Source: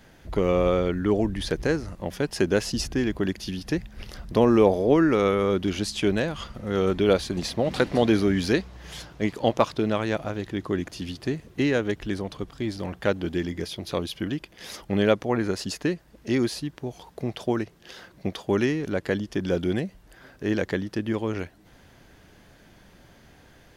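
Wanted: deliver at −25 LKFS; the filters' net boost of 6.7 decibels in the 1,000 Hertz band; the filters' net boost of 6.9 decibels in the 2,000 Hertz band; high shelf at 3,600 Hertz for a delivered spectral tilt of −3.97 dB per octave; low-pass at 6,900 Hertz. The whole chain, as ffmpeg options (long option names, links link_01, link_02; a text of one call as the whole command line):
ffmpeg -i in.wav -af "lowpass=6900,equalizer=frequency=1000:width_type=o:gain=7,equalizer=frequency=2000:width_type=o:gain=4.5,highshelf=frequency=3600:gain=7,volume=-1.5dB" out.wav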